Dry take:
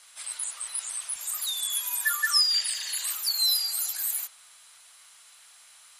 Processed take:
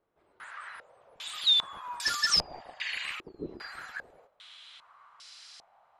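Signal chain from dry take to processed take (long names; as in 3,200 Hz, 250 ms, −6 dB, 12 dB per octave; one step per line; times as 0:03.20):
wave folding −23.5 dBFS
low-pass on a step sequencer 2.5 Hz 360–5,000 Hz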